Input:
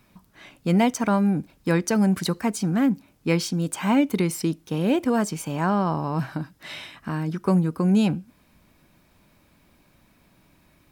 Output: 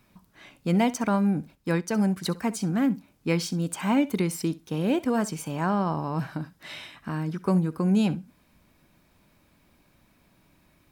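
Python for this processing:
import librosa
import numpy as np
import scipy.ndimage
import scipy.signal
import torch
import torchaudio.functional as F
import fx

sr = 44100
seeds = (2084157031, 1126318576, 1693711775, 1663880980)

y = fx.room_flutter(x, sr, wall_m=11.1, rt60_s=0.21)
y = fx.upward_expand(y, sr, threshold_db=-31.0, expansion=1.5, at=(1.55, 2.24))
y = F.gain(torch.from_numpy(y), -3.0).numpy()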